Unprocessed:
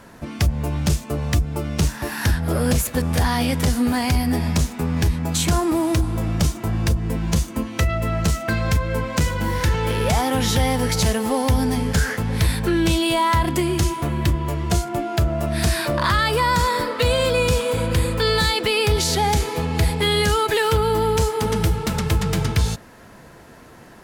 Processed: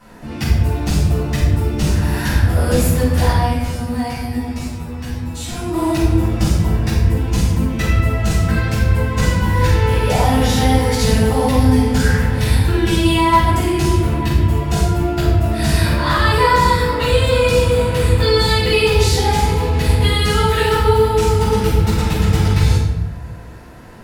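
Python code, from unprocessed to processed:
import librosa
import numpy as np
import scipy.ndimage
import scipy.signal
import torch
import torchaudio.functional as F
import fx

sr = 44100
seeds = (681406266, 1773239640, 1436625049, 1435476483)

y = fx.comb_fb(x, sr, f0_hz=120.0, decay_s=0.2, harmonics='all', damping=0.0, mix_pct=90, at=(3.31, 5.73))
y = fx.room_shoebox(y, sr, seeds[0], volume_m3=450.0, walls='mixed', distance_m=7.3)
y = F.gain(torch.from_numpy(y), -11.5).numpy()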